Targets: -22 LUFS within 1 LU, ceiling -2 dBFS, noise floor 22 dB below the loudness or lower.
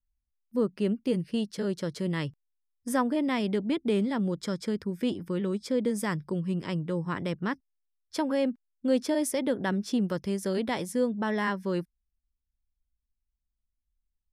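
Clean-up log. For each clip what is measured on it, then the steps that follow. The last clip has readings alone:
loudness -30.0 LUFS; peak -15.0 dBFS; loudness target -22.0 LUFS
-> gain +8 dB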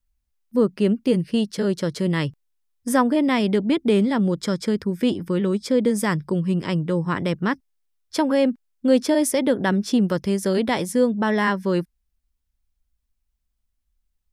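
loudness -22.0 LUFS; peak -7.0 dBFS; noise floor -75 dBFS

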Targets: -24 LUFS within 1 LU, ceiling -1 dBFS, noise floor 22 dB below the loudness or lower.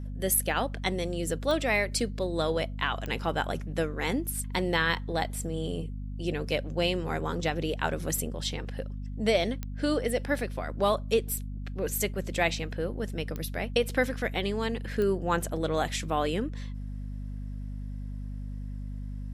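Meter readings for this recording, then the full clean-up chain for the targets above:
clicks 5; hum 50 Hz; harmonics up to 250 Hz; hum level -34 dBFS; loudness -30.5 LUFS; peak -11.5 dBFS; loudness target -24.0 LUFS
-> de-click; de-hum 50 Hz, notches 5; gain +6.5 dB

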